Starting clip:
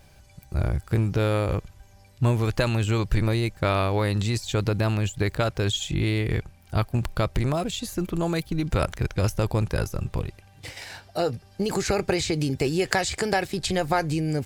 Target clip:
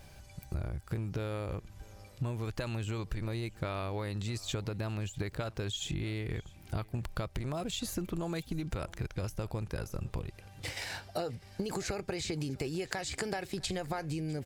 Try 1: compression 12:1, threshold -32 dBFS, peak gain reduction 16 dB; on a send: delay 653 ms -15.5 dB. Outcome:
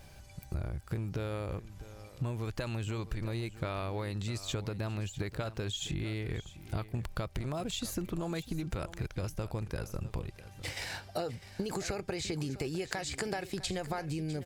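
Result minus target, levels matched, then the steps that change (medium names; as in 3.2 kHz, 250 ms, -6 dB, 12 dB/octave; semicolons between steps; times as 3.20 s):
echo-to-direct +7.5 dB
change: delay 653 ms -23 dB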